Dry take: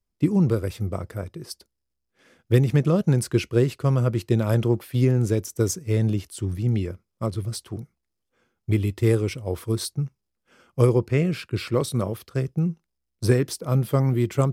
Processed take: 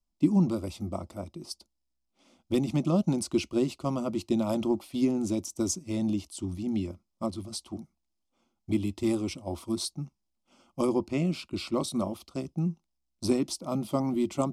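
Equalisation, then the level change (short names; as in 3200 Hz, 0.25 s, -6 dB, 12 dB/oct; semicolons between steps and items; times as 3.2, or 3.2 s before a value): LPF 8500 Hz 12 dB/oct; fixed phaser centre 450 Hz, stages 6; 0.0 dB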